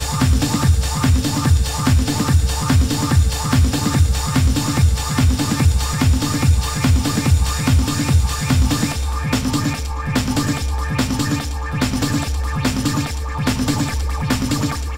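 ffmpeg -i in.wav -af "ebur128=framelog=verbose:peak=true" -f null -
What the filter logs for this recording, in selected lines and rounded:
Integrated loudness:
  I:         -18.1 LUFS
  Threshold: -28.1 LUFS
Loudness range:
  LRA:         3.7 LU
  Threshold: -38.0 LUFS
  LRA low:   -20.5 LUFS
  LRA high:  -16.9 LUFS
True peak:
  Peak:       -4.3 dBFS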